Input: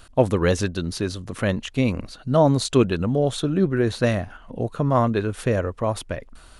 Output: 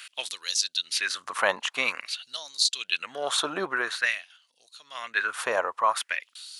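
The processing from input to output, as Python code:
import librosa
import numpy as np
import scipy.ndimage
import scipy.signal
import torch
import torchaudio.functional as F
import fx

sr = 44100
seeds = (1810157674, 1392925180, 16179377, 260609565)

y = fx.filter_lfo_highpass(x, sr, shape='sine', hz=0.49, low_hz=890.0, high_hz=4700.0, q=3.2)
y = fx.rider(y, sr, range_db=5, speed_s=0.5)
y = y * 10.0 ** (2.0 / 20.0)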